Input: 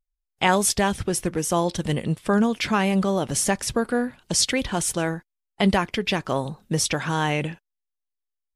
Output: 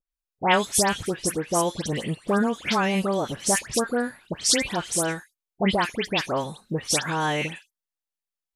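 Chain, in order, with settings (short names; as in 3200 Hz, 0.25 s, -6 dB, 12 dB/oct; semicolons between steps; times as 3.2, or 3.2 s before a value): low shelf 160 Hz -9.5 dB; dispersion highs, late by 0.119 s, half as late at 2200 Hz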